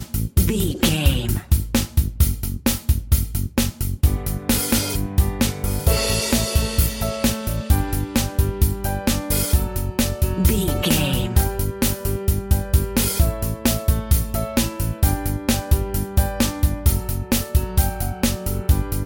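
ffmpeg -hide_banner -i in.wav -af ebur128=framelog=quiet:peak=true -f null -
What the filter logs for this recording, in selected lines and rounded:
Integrated loudness:
  I:         -21.0 LUFS
  Threshold: -31.0 LUFS
Loudness range:
  LRA:         1.1 LU
  Threshold: -41.0 LUFS
  LRA low:   -21.5 LUFS
  LRA high:  -20.4 LUFS
True peak:
  Peak:       -4.2 dBFS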